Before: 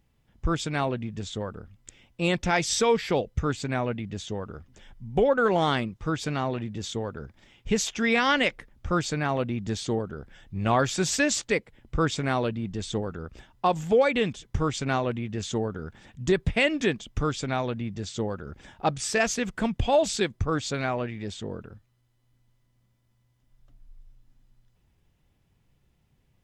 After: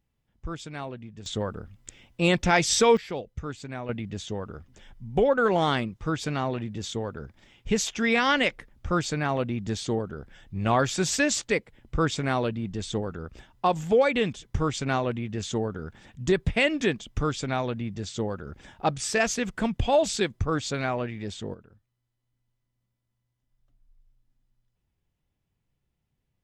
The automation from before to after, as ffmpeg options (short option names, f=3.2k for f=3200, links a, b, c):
-af "asetnsamples=n=441:p=0,asendcmd='1.26 volume volume 3dB;2.97 volume volume -8dB;3.89 volume volume 0dB;21.54 volume volume -11dB',volume=-9dB"